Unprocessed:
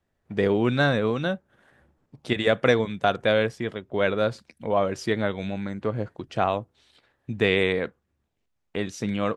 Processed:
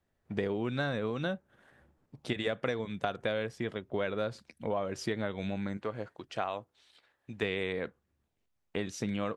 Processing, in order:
0:05.77–0:07.43: low-shelf EQ 370 Hz −12 dB
downward compressor 6 to 1, threshold −26 dBFS, peak gain reduction 11.5 dB
level −3 dB

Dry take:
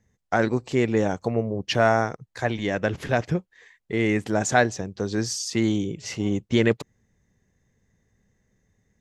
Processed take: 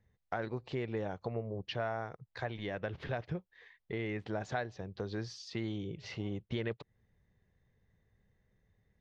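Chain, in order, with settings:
octave-band graphic EQ 250/4,000/8,000 Hz −7/+8/−10 dB
downward compressor 2.5 to 1, threshold −33 dBFS, peak gain reduction 13 dB
head-to-tape spacing loss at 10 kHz 22 dB
level −3 dB

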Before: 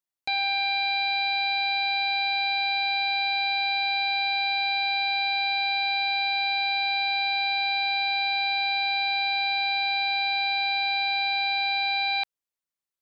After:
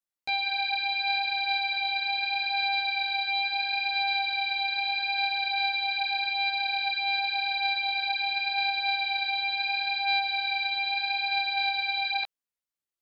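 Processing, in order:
multi-voice chorus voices 2, 0.74 Hz, delay 15 ms, depth 2.4 ms

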